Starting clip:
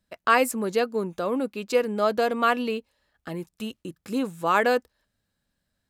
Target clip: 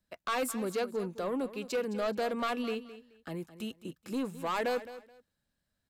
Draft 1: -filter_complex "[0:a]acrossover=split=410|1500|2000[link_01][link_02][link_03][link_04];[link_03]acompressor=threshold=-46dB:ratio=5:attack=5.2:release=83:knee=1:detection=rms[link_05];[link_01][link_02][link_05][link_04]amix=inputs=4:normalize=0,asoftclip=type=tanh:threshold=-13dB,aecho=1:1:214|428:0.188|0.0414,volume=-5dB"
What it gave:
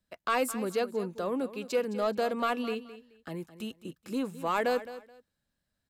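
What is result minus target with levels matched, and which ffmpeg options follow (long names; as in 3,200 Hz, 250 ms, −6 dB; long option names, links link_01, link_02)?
soft clipping: distortion −9 dB
-filter_complex "[0:a]acrossover=split=410|1500|2000[link_01][link_02][link_03][link_04];[link_03]acompressor=threshold=-46dB:ratio=5:attack=5.2:release=83:knee=1:detection=rms[link_05];[link_01][link_02][link_05][link_04]amix=inputs=4:normalize=0,asoftclip=type=tanh:threshold=-21.5dB,aecho=1:1:214|428:0.188|0.0414,volume=-5dB"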